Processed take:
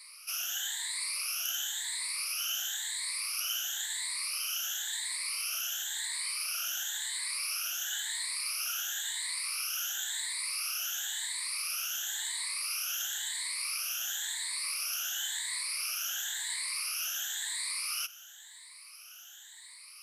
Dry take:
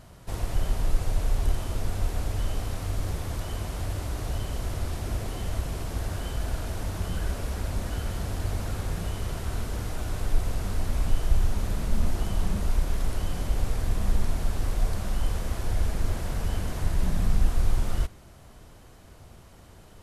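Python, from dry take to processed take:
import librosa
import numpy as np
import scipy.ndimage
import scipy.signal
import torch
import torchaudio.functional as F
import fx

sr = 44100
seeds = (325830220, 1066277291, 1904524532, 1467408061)

y = fx.spec_ripple(x, sr, per_octave=0.96, drift_hz=0.96, depth_db=24)
y = scipy.signal.sosfilt(scipy.signal.bessel(4, 2700.0, 'highpass', norm='mag', fs=sr, output='sos'), y)
y = y * 10.0 ** (6.0 / 20.0)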